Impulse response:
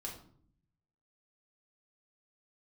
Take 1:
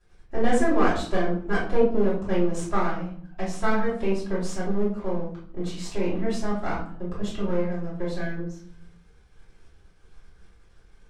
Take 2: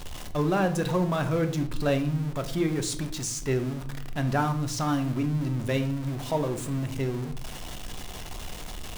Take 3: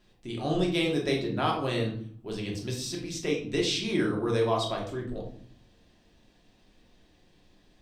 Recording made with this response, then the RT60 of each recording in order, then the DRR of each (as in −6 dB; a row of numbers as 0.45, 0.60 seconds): 3; 0.55, 0.60, 0.60 seconds; −10.0, 7.5, −2.0 decibels